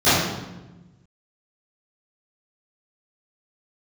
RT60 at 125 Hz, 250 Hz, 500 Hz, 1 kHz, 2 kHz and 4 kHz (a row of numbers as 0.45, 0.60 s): 1.7, 1.6, 1.2, 1.0, 0.90, 0.80 s